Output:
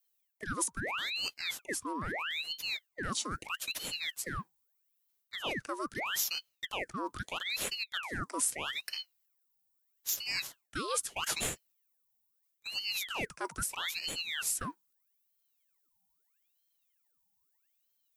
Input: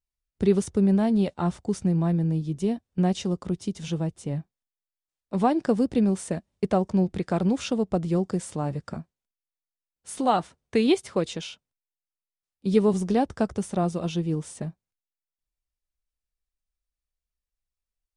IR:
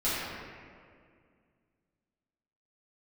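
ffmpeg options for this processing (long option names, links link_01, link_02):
-af "afreqshift=470,areverse,acompressor=threshold=-30dB:ratio=10,areverse,aemphasis=mode=production:type=riaa,aeval=exprs='val(0)*sin(2*PI*2000*n/s+2000*0.85/0.78*sin(2*PI*0.78*n/s))':channel_layout=same"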